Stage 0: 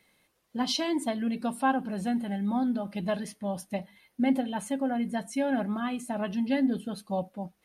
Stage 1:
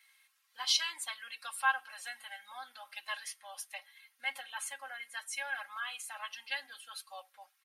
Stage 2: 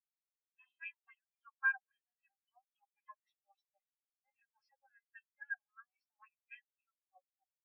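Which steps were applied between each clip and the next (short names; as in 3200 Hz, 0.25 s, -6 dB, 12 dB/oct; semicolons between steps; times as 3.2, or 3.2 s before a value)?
HPF 1200 Hz 24 dB/oct; comb 3.7 ms, depth 80%
nonlinear frequency compression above 1900 Hz 1.5:1; LFO band-pass sine 3.7 Hz 250–3000 Hz; spectral expander 2.5:1; gain +3.5 dB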